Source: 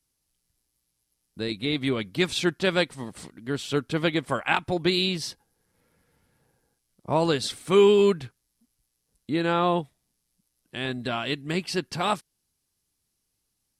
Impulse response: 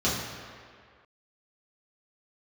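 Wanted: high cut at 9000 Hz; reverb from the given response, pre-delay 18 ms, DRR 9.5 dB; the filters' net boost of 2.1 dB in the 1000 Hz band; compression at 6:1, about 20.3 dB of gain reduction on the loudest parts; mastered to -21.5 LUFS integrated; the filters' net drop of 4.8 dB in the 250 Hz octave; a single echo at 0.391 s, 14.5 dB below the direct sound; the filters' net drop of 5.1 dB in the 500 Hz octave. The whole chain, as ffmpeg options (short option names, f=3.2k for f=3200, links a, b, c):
-filter_complex "[0:a]lowpass=9k,equalizer=f=250:t=o:g=-5.5,equalizer=f=500:t=o:g=-5.5,equalizer=f=1k:t=o:g=4.5,acompressor=threshold=-40dB:ratio=6,aecho=1:1:391:0.188,asplit=2[a][b];[1:a]atrim=start_sample=2205,adelay=18[c];[b][c]afir=irnorm=-1:irlink=0,volume=-22.5dB[d];[a][d]amix=inputs=2:normalize=0,volume=21dB"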